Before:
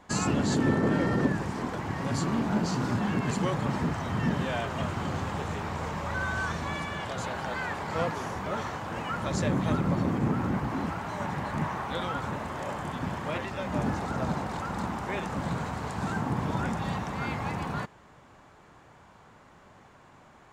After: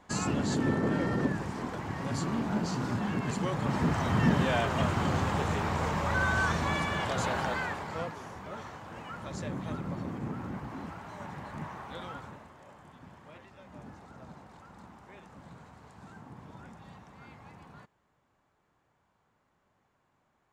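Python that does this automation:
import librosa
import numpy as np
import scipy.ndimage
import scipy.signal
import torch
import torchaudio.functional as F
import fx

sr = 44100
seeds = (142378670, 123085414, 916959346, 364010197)

y = fx.gain(x, sr, db=fx.line((3.49, -3.5), (4.0, 3.0), (7.41, 3.0), (8.17, -9.5), (12.13, -9.5), (12.57, -19.0)))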